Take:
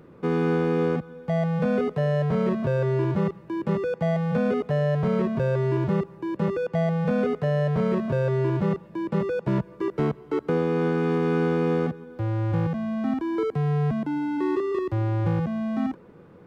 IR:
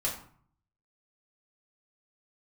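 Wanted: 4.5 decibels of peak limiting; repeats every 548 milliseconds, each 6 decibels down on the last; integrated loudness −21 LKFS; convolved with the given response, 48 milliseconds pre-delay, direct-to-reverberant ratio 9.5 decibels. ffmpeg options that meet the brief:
-filter_complex "[0:a]alimiter=limit=-19dB:level=0:latency=1,aecho=1:1:548|1096|1644|2192|2740|3288:0.501|0.251|0.125|0.0626|0.0313|0.0157,asplit=2[link_01][link_02];[1:a]atrim=start_sample=2205,adelay=48[link_03];[link_02][link_03]afir=irnorm=-1:irlink=0,volume=-15dB[link_04];[link_01][link_04]amix=inputs=2:normalize=0,volume=4.5dB"

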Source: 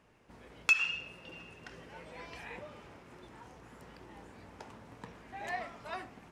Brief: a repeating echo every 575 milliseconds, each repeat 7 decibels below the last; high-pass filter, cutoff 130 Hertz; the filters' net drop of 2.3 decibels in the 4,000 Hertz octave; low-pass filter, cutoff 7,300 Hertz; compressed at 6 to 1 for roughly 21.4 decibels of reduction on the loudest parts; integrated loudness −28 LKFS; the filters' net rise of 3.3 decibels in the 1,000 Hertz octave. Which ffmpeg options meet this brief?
ffmpeg -i in.wav -af "highpass=130,lowpass=7300,equalizer=frequency=1000:width_type=o:gain=5,equalizer=frequency=4000:width_type=o:gain=-4,acompressor=threshold=-47dB:ratio=6,aecho=1:1:575|1150|1725|2300|2875:0.447|0.201|0.0905|0.0407|0.0183,volume=22.5dB" out.wav

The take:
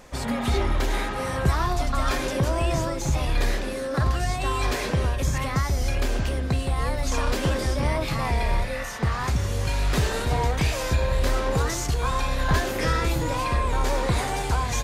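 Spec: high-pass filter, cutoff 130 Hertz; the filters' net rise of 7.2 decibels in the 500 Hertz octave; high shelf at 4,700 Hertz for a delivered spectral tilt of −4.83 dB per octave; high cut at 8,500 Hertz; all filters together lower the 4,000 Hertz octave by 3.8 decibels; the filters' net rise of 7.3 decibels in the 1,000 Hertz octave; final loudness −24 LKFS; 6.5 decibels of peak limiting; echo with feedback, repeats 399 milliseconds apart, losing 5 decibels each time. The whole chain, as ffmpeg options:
ffmpeg -i in.wav -af "highpass=130,lowpass=8500,equalizer=frequency=500:width_type=o:gain=6.5,equalizer=frequency=1000:width_type=o:gain=7,equalizer=frequency=4000:width_type=o:gain=-7.5,highshelf=frequency=4700:gain=4.5,alimiter=limit=-14dB:level=0:latency=1,aecho=1:1:399|798|1197|1596|1995|2394|2793:0.562|0.315|0.176|0.0988|0.0553|0.031|0.0173,volume=-1.5dB" out.wav

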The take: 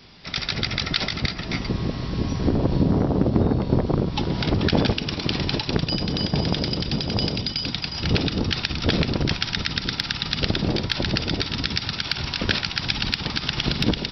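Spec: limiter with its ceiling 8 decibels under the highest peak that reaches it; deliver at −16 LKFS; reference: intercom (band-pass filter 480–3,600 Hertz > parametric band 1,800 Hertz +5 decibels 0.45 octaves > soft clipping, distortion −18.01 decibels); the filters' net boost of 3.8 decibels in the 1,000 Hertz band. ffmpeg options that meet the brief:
ffmpeg -i in.wav -af "equalizer=frequency=1000:width_type=o:gain=5,alimiter=limit=-12dB:level=0:latency=1,highpass=480,lowpass=3600,equalizer=frequency=1800:width_type=o:width=0.45:gain=5,asoftclip=threshold=-17.5dB,volume=14.5dB" out.wav

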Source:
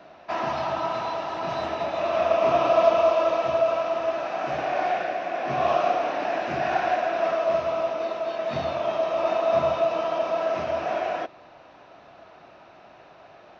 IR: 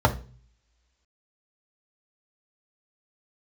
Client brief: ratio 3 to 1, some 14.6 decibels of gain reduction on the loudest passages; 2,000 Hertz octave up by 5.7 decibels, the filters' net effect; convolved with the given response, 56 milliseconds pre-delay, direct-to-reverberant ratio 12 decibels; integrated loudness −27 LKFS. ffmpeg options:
-filter_complex "[0:a]equalizer=frequency=2000:width_type=o:gain=7.5,acompressor=threshold=-34dB:ratio=3,asplit=2[link_01][link_02];[1:a]atrim=start_sample=2205,adelay=56[link_03];[link_02][link_03]afir=irnorm=-1:irlink=0,volume=-29.5dB[link_04];[link_01][link_04]amix=inputs=2:normalize=0,volume=6.5dB"

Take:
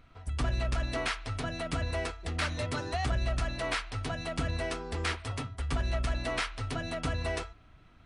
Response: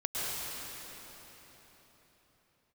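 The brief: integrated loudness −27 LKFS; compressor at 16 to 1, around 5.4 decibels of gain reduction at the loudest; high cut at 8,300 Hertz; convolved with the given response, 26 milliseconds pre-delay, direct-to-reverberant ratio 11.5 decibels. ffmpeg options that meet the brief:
-filter_complex "[0:a]lowpass=8300,acompressor=threshold=-31dB:ratio=16,asplit=2[link_01][link_02];[1:a]atrim=start_sample=2205,adelay=26[link_03];[link_02][link_03]afir=irnorm=-1:irlink=0,volume=-19dB[link_04];[link_01][link_04]amix=inputs=2:normalize=0,volume=9.5dB"

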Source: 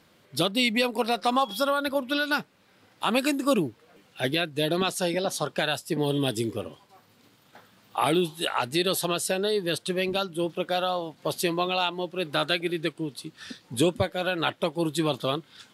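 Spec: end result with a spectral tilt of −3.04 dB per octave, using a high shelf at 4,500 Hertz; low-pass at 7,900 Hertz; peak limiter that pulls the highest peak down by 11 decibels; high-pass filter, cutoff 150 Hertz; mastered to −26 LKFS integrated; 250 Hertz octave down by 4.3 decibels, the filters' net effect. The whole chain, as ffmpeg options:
ffmpeg -i in.wav -af "highpass=150,lowpass=7900,equalizer=frequency=250:width_type=o:gain=-5.5,highshelf=frequency=4500:gain=-7.5,volume=8.5dB,alimiter=limit=-14.5dB:level=0:latency=1" out.wav

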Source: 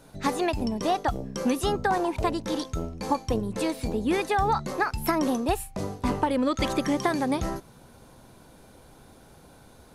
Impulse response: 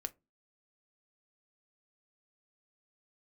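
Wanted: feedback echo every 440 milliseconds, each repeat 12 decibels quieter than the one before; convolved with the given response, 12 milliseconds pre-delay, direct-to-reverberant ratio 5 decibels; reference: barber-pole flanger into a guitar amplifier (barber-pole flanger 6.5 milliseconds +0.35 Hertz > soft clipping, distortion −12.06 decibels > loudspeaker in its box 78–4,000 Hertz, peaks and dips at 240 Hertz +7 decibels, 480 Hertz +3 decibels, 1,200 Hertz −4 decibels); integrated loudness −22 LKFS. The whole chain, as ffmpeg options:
-filter_complex "[0:a]aecho=1:1:440|880|1320:0.251|0.0628|0.0157,asplit=2[link_01][link_02];[1:a]atrim=start_sample=2205,adelay=12[link_03];[link_02][link_03]afir=irnorm=-1:irlink=0,volume=-3dB[link_04];[link_01][link_04]amix=inputs=2:normalize=0,asplit=2[link_05][link_06];[link_06]adelay=6.5,afreqshift=0.35[link_07];[link_05][link_07]amix=inputs=2:normalize=1,asoftclip=threshold=-23dB,highpass=78,equalizer=frequency=240:width_type=q:width=4:gain=7,equalizer=frequency=480:width_type=q:width=4:gain=3,equalizer=frequency=1200:width_type=q:width=4:gain=-4,lowpass=frequency=4000:width=0.5412,lowpass=frequency=4000:width=1.3066,volume=7dB"

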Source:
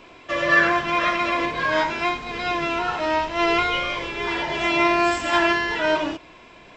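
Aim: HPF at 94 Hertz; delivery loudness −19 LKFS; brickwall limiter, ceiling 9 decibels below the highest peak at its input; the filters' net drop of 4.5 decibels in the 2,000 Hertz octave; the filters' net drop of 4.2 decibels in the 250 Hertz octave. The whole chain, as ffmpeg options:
ffmpeg -i in.wav -af "highpass=94,equalizer=frequency=250:width_type=o:gain=-7,equalizer=frequency=2000:width_type=o:gain=-5.5,volume=8.5dB,alimiter=limit=-10.5dB:level=0:latency=1" out.wav

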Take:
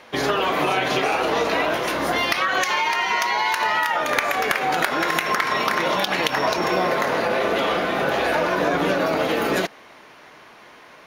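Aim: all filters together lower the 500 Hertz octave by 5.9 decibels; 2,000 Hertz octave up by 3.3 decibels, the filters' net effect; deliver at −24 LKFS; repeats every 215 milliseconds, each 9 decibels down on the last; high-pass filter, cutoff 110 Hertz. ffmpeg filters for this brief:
ffmpeg -i in.wav -af "highpass=110,equalizer=frequency=500:width_type=o:gain=-8,equalizer=frequency=2000:width_type=o:gain=4.5,aecho=1:1:215|430|645|860:0.355|0.124|0.0435|0.0152,volume=-4dB" out.wav

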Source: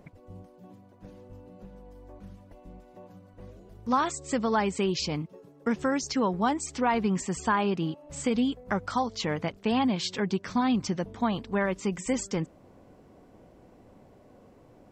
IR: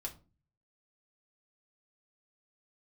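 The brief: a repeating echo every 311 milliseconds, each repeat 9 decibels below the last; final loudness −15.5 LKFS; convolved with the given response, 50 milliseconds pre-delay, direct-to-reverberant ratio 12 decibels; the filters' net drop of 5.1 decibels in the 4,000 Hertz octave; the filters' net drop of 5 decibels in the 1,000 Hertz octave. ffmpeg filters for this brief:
-filter_complex "[0:a]equalizer=frequency=1000:width_type=o:gain=-6,equalizer=frequency=4000:width_type=o:gain=-6.5,aecho=1:1:311|622|933|1244:0.355|0.124|0.0435|0.0152,asplit=2[link_01][link_02];[1:a]atrim=start_sample=2205,adelay=50[link_03];[link_02][link_03]afir=irnorm=-1:irlink=0,volume=-10.5dB[link_04];[link_01][link_04]amix=inputs=2:normalize=0,volume=14dB"

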